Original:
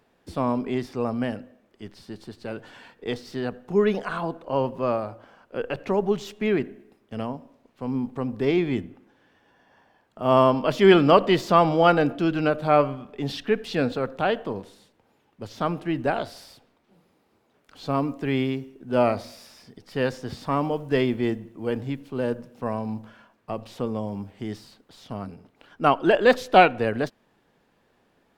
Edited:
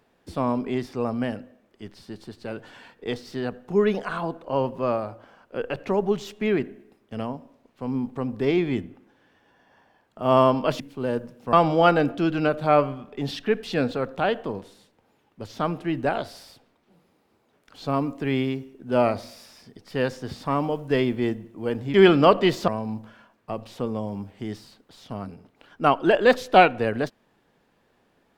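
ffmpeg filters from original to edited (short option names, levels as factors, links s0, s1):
-filter_complex "[0:a]asplit=5[s0][s1][s2][s3][s4];[s0]atrim=end=10.802[s5];[s1]atrim=start=21.948:end=22.682[s6];[s2]atrim=start=11.538:end=21.952[s7];[s3]atrim=start=10.798:end=11.542[s8];[s4]atrim=start=22.678[s9];[s5][s6]acrossfade=d=0.004:c1=hsin:c2=hsin[s10];[s10][s7]acrossfade=d=0.004:c1=hsin:c2=hsin[s11];[s11][s8]acrossfade=d=0.004:c1=hsin:c2=hsin[s12];[s12][s9]acrossfade=d=0.004:c1=hsin:c2=hsin"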